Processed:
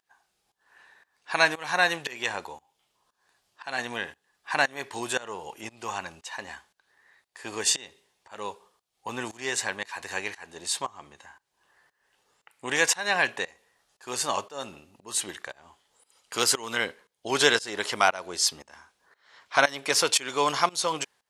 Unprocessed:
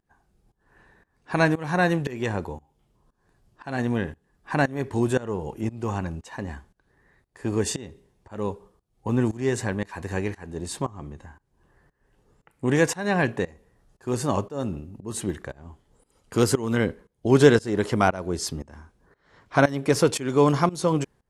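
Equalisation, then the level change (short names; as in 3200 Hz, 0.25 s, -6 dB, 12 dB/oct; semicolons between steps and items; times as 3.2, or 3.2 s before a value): tilt +3.5 dB/oct; bell 770 Hz +8.5 dB 1.9 oct; bell 3400 Hz +12.5 dB 2.6 oct; -11.0 dB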